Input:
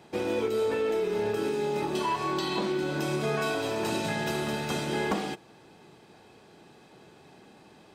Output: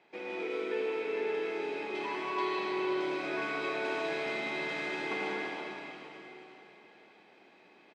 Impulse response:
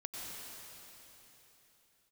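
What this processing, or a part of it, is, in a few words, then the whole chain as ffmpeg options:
station announcement: -filter_complex "[0:a]highpass=320,lowpass=4100,equalizer=f=2200:t=o:w=0.56:g=10,aecho=1:1:78.72|265.3:0.316|0.316[s0];[1:a]atrim=start_sample=2205[s1];[s0][s1]afir=irnorm=-1:irlink=0,volume=0.501"

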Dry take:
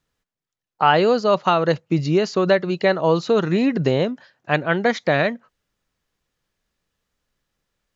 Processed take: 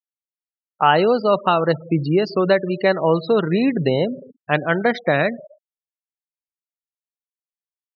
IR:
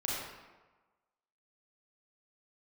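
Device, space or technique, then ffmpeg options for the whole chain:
compressed reverb return: -filter_complex "[0:a]asplit=2[s0][s1];[1:a]atrim=start_sample=2205[s2];[s1][s2]afir=irnorm=-1:irlink=0,acompressor=threshold=0.224:ratio=10,volume=0.133[s3];[s0][s3]amix=inputs=2:normalize=0,asplit=3[s4][s5][s6];[s4]afade=t=out:st=3.36:d=0.02[s7];[s5]highshelf=f=4000:g=5,afade=t=in:st=3.36:d=0.02,afade=t=out:st=3.99:d=0.02[s8];[s6]afade=t=in:st=3.99:d=0.02[s9];[s7][s8][s9]amix=inputs=3:normalize=0,afftfilt=real='re*gte(hypot(re,im),0.0562)':imag='im*gte(hypot(re,im),0.0562)':win_size=1024:overlap=0.75,highpass=100"

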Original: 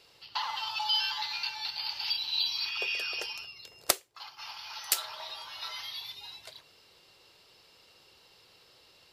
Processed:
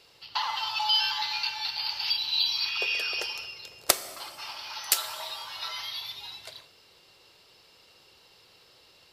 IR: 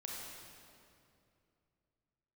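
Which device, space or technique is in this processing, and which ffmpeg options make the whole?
keyed gated reverb: -filter_complex "[0:a]asplit=3[s0][s1][s2];[1:a]atrim=start_sample=2205[s3];[s1][s3]afir=irnorm=-1:irlink=0[s4];[s2]apad=whole_len=402393[s5];[s4][s5]sidechaingate=range=0.0224:threshold=0.00178:ratio=16:detection=peak,volume=0.422[s6];[s0][s6]amix=inputs=2:normalize=0,volume=1.26"

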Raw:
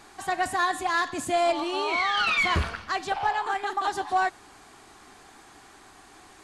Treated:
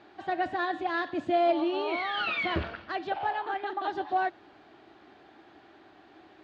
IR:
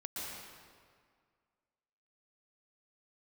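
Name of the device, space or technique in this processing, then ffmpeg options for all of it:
guitar cabinet: -af "highpass=87,equalizer=f=330:t=q:w=4:g=9,equalizer=f=610:t=q:w=4:g=7,equalizer=f=1100:t=q:w=4:g=-6,equalizer=f=2200:t=q:w=4:g=-3,lowpass=f=3700:w=0.5412,lowpass=f=3700:w=1.3066,volume=0.596"

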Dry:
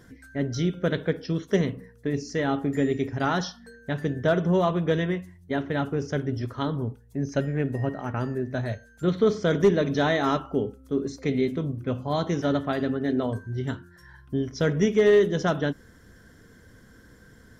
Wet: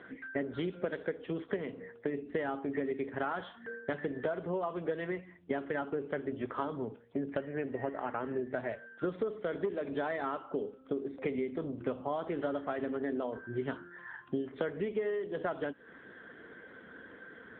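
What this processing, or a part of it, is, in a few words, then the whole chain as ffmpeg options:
voicemail: -filter_complex "[0:a]asplit=3[s0][s1][s2];[s0]afade=t=out:st=14.37:d=0.02[s3];[s1]highshelf=f=5000:g=2,afade=t=in:st=14.37:d=0.02,afade=t=out:st=14.92:d=0.02[s4];[s2]afade=t=in:st=14.92:d=0.02[s5];[s3][s4][s5]amix=inputs=3:normalize=0,highpass=360,lowpass=3100,acompressor=threshold=0.0126:ratio=12,volume=2.37" -ar 8000 -c:a libopencore_amrnb -b:a 7950

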